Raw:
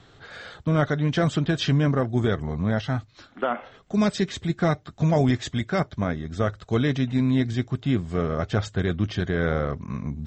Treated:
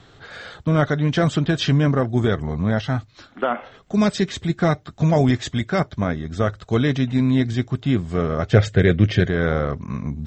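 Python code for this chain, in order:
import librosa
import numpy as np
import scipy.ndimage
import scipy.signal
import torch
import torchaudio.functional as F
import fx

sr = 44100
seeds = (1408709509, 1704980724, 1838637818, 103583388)

y = fx.graphic_eq(x, sr, hz=(125, 500, 1000, 2000), db=(8, 10, -8, 10), at=(8.53, 9.28))
y = y * librosa.db_to_amplitude(3.5)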